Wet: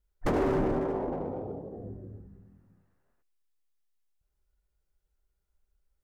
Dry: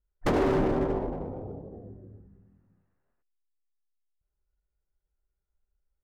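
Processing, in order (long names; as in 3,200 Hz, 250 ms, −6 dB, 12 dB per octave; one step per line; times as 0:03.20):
dynamic equaliser 3,700 Hz, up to −5 dB, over −52 dBFS, Q 1
brickwall limiter −25.5 dBFS, peak gain reduction 6.5 dB
0:00.80–0:01.79: low-shelf EQ 120 Hz −12 dB
level +4 dB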